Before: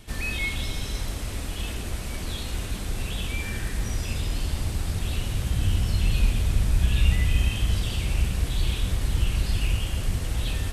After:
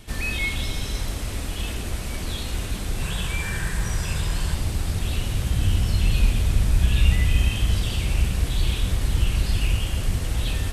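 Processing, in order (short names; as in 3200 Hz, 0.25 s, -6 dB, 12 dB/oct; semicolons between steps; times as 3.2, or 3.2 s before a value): 3.02–4.55 thirty-one-band EQ 160 Hz +8 dB, 250 Hz -11 dB, 1000 Hz +6 dB, 1600 Hz +7 dB, 8000 Hz +4 dB; gain +2.5 dB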